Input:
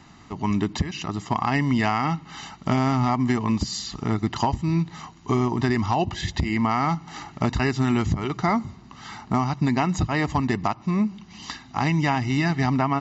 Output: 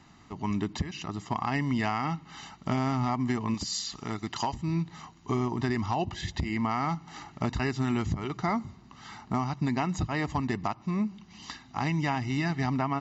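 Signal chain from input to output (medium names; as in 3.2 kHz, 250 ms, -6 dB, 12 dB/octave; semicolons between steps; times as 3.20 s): 3.54–4.55 s: tilt EQ +2 dB/octave; trim -6.5 dB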